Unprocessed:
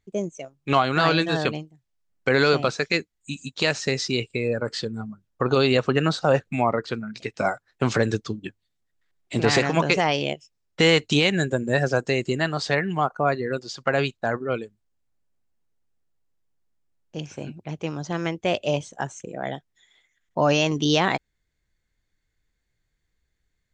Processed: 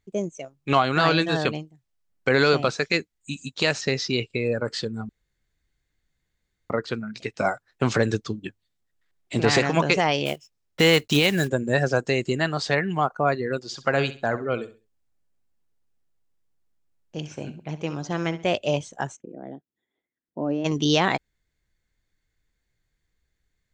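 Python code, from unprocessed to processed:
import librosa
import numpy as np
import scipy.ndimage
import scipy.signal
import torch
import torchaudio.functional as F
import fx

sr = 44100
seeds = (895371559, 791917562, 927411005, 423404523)

y = fx.lowpass(x, sr, hz=6200.0, slope=24, at=(3.81, 4.46))
y = fx.block_float(y, sr, bits=5, at=(10.25, 11.47), fade=0.02)
y = fx.echo_feedback(y, sr, ms=66, feedback_pct=27, wet_db=-14.0, at=(13.6, 18.47))
y = fx.bandpass_q(y, sr, hz=290.0, q=1.9, at=(19.15, 20.64), fade=0.02)
y = fx.edit(y, sr, fx.room_tone_fill(start_s=5.09, length_s=1.61), tone=tone)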